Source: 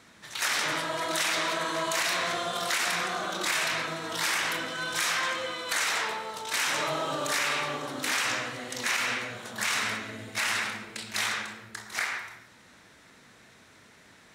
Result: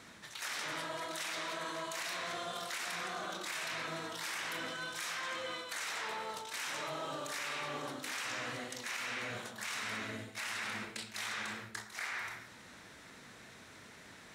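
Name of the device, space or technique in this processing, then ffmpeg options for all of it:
compression on the reversed sound: -af "areverse,acompressor=threshold=0.0112:ratio=6,areverse,volume=1.12"

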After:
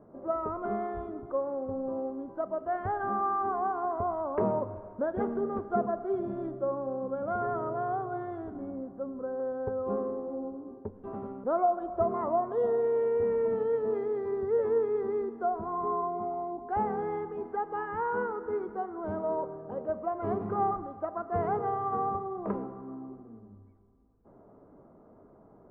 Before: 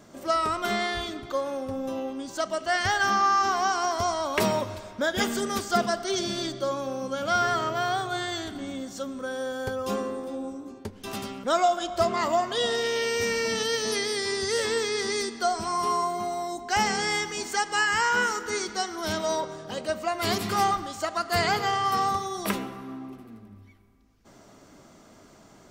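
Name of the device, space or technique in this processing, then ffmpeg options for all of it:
under water: -filter_complex "[0:a]asettb=1/sr,asplit=3[s0][s1][s2];[s0]atrim=end=8.714[s3];[s1]atrim=start=8.71:end=9.4,asetpts=PTS-STARTPTS,afade=t=in:d=0.004:c=qsin,afade=t=out:st=0.686:d=0.004:c=qsin,lowpass=1800[s4];[s2]atrim=start=9.396[s5];[s3][s4]acrossfade=d=0.004:c1=hsin:c2=qsin[s6];[s6][s5]acrossfade=d=0.004:c1=qsin:c2=hsin,lowpass=f=1100:w=0.5412,lowpass=f=1100:w=1.3066,equalizer=f=450:t=o:w=0.46:g=6,volume=0.631"

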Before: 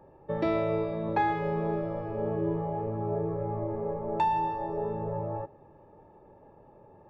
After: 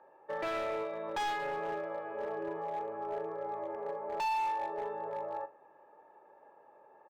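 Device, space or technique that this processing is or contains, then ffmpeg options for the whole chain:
megaphone: -filter_complex "[0:a]highpass=650,lowpass=3000,equalizer=f=1600:t=o:w=0.43:g=5,asoftclip=type=hard:threshold=0.0266,asplit=2[s0][s1];[s1]adelay=43,volume=0.211[s2];[s0][s2]amix=inputs=2:normalize=0"

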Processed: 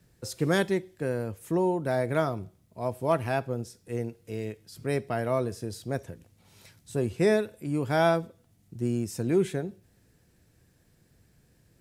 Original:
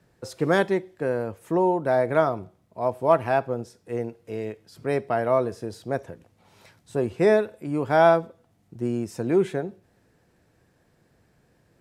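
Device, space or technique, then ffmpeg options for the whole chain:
smiley-face EQ: -af "lowshelf=f=140:g=8.5,lowshelf=f=410:g=-3,equalizer=f=870:t=o:w=2.1:g=-7.5,highshelf=f=6400:g=8"

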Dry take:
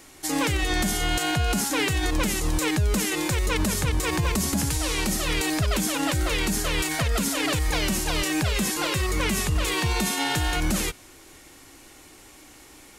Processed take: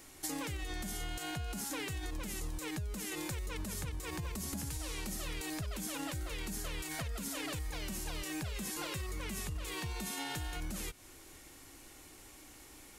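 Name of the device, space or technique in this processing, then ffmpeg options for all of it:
ASMR close-microphone chain: -af "lowshelf=f=110:g=5,acompressor=threshold=0.0316:ratio=6,highshelf=f=11000:g=7,volume=0.422"

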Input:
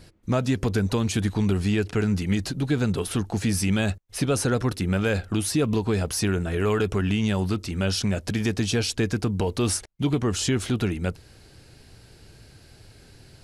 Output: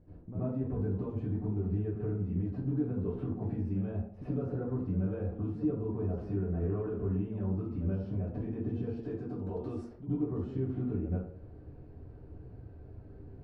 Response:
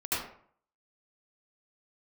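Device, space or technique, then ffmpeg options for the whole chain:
television next door: -filter_complex "[0:a]acompressor=threshold=0.0251:ratio=6,lowpass=590[s0];[1:a]atrim=start_sample=2205[s1];[s0][s1]afir=irnorm=-1:irlink=0,asettb=1/sr,asplit=3[s2][s3][s4];[s2]atrim=end=9.034[s5];[s3]atrim=start=9.03:end=10.03,asetpts=PTS-STARTPTS,afade=t=in:d=0.004:c=qsin,afade=t=out:st=0.996:d=0.004:c=qsin,bass=f=250:g=-6,treble=f=4000:g=15[s6];[s4]atrim=start=10.026[s7];[s5][s6]acrossfade=d=0.004:c1=hsin:c2=qsin[s8];[s8][s7]acrossfade=d=0.004:c1=qsin:c2=hsin,volume=0.531"

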